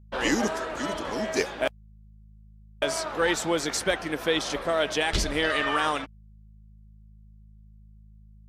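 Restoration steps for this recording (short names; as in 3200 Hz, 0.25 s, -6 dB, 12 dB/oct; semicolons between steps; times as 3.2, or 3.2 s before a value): clip repair -12.5 dBFS; de-hum 52.7 Hz, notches 4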